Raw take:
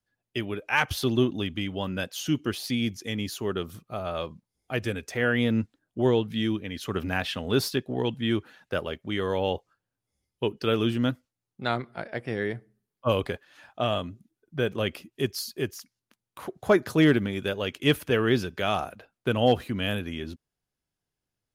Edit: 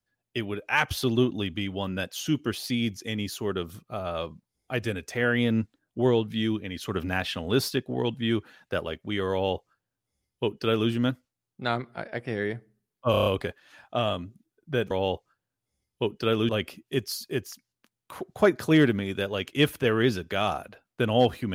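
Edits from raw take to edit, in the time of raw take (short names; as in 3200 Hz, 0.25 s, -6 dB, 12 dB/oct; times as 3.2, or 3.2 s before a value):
9.32–10.9 copy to 14.76
13.11 stutter 0.03 s, 6 plays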